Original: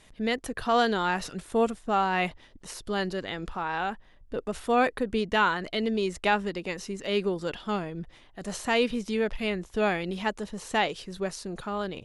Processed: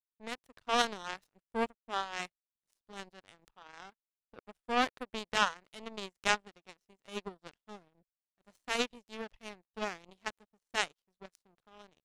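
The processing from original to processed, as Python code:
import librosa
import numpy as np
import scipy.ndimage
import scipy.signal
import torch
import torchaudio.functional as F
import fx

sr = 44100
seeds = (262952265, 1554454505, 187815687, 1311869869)

y = fx.power_curve(x, sr, exponent=3.0)
y = y * librosa.db_to_amplitude(3.5)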